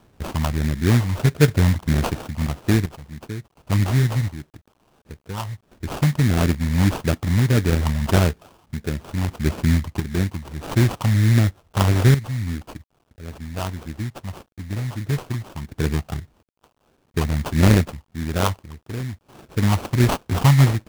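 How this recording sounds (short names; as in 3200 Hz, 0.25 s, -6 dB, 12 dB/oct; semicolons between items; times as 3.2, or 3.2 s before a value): phasing stages 6, 1.6 Hz, lowest notch 390–1100 Hz; aliases and images of a low sample rate 2000 Hz, jitter 20%; random-step tremolo 1.4 Hz, depth 85%; a quantiser's noise floor 12-bit, dither none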